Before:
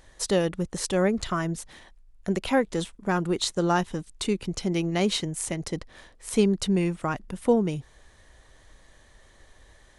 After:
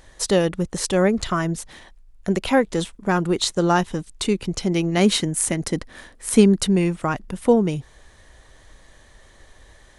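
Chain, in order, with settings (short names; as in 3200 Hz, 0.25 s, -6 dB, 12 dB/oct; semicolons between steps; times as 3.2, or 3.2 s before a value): 4.97–6.67 fifteen-band EQ 250 Hz +6 dB, 1600 Hz +4 dB, 10000 Hz +6 dB; gain +5 dB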